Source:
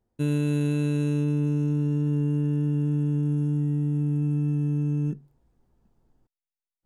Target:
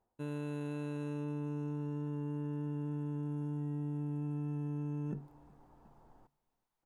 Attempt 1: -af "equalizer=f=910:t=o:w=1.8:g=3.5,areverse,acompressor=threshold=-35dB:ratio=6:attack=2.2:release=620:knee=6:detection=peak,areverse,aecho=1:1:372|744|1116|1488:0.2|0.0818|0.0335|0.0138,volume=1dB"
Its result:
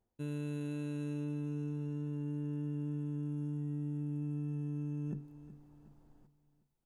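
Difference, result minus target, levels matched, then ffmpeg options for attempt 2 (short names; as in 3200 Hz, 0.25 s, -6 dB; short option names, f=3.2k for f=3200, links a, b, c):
1000 Hz band -9.5 dB; echo-to-direct +10 dB
-af "equalizer=f=910:t=o:w=1.8:g=15.5,areverse,acompressor=threshold=-35dB:ratio=6:attack=2.2:release=620:knee=6:detection=peak,areverse,aecho=1:1:372|744|1116:0.0631|0.0259|0.0106,volume=1dB"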